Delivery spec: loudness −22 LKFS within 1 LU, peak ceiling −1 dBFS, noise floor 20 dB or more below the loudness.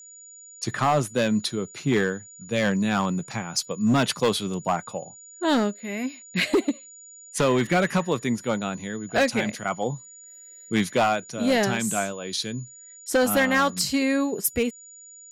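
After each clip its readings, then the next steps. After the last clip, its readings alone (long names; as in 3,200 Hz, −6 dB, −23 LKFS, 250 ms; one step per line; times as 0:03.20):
share of clipped samples 1.3%; peaks flattened at −15.0 dBFS; interfering tone 6,900 Hz; level of the tone −44 dBFS; integrated loudness −24.5 LKFS; sample peak −15.0 dBFS; target loudness −22.0 LKFS
→ clipped peaks rebuilt −15 dBFS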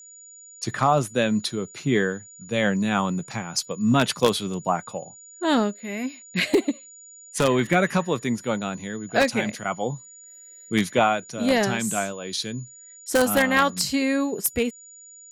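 share of clipped samples 0.0%; interfering tone 6,900 Hz; level of the tone −44 dBFS
→ notch filter 6,900 Hz, Q 30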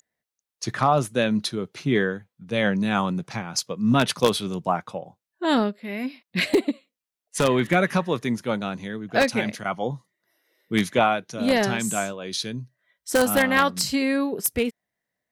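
interfering tone none found; integrated loudness −24.0 LKFS; sample peak −6.0 dBFS; target loudness −22.0 LKFS
→ level +2 dB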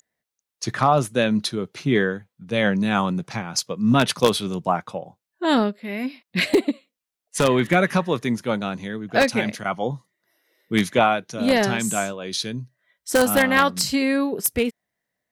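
integrated loudness −22.0 LKFS; sample peak −4.0 dBFS; background noise floor −87 dBFS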